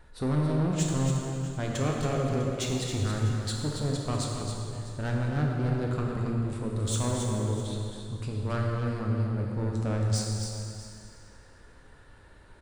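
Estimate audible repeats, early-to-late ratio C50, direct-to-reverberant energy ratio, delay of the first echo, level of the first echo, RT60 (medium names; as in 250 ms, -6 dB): 2, -0.5 dB, -2.0 dB, 274 ms, -7.0 dB, 2.4 s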